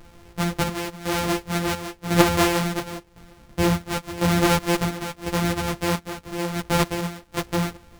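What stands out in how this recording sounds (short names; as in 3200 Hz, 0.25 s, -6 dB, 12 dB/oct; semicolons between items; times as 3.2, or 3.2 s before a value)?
a buzz of ramps at a fixed pitch in blocks of 256 samples; chopped level 0.95 Hz, depth 60%, duty 65%; a shimmering, thickened sound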